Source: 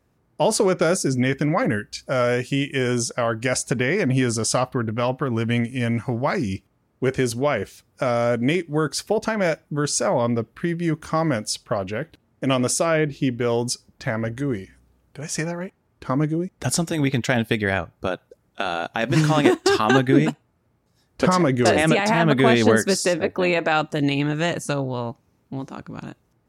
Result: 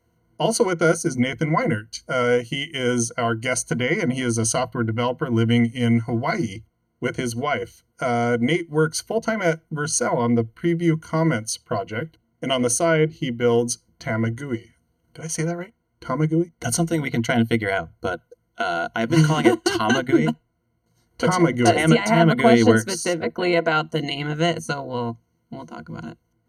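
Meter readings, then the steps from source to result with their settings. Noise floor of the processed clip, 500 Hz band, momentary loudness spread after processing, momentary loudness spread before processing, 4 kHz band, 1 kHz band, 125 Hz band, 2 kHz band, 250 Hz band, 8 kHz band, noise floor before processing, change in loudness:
-70 dBFS, 0.0 dB, 12 LU, 11 LU, 0.0 dB, +0.5 dB, +0.5 dB, 0.0 dB, +1.0 dB, +1.0 dB, -66 dBFS, 0.0 dB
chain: transient shaper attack -1 dB, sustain -6 dB; rippled EQ curve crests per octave 1.9, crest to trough 17 dB; trim -2.5 dB

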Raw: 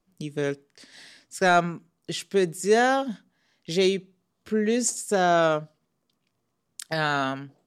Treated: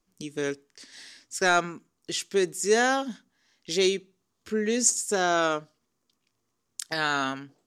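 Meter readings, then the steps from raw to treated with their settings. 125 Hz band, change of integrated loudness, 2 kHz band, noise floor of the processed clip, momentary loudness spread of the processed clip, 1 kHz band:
-8.0 dB, -1.5 dB, 0.0 dB, -78 dBFS, 17 LU, -3.0 dB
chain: fifteen-band graphic EQ 160 Hz -10 dB, 630 Hz -6 dB, 6.3 kHz +6 dB

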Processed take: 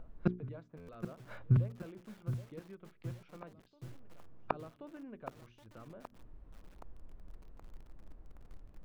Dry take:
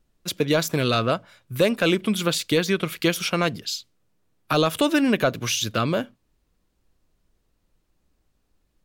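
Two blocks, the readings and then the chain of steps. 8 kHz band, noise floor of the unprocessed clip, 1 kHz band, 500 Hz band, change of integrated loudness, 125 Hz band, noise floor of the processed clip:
under -35 dB, -71 dBFS, -19.0 dB, -24.0 dB, -16.5 dB, -7.0 dB, -65 dBFS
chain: bass shelf 66 Hz +10 dB; inverted gate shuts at -23 dBFS, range -38 dB; upward compressor, threshold -59 dBFS; low-pass 1.2 kHz 12 dB/octave; hum notches 60/120/180/240/300/360/420 Hz; reverse echo 1080 ms -18 dB; buffer glitch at 0.77 s, samples 512, times 9; bit-crushed delay 772 ms, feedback 55%, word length 10-bit, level -10 dB; trim +9.5 dB

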